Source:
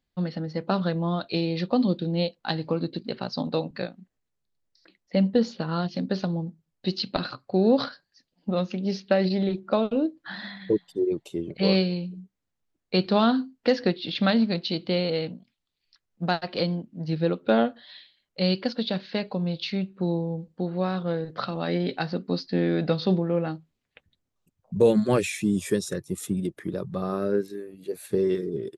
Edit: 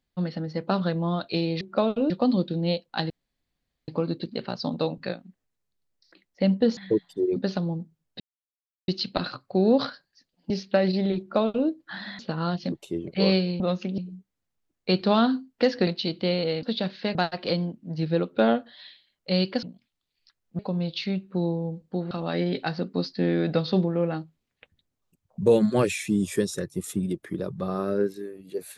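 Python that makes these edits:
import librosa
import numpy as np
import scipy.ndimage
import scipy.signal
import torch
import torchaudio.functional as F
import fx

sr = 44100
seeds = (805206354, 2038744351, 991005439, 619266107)

y = fx.edit(x, sr, fx.insert_room_tone(at_s=2.61, length_s=0.78),
    fx.swap(start_s=5.5, length_s=0.53, other_s=10.56, other_length_s=0.59),
    fx.insert_silence(at_s=6.87, length_s=0.68),
    fx.move(start_s=8.49, length_s=0.38, to_s=12.03),
    fx.duplicate(start_s=9.56, length_s=0.49, to_s=1.61),
    fx.cut(start_s=13.92, length_s=0.61),
    fx.swap(start_s=15.29, length_s=0.96, other_s=18.73, other_length_s=0.52),
    fx.cut(start_s=20.77, length_s=0.68), tone=tone)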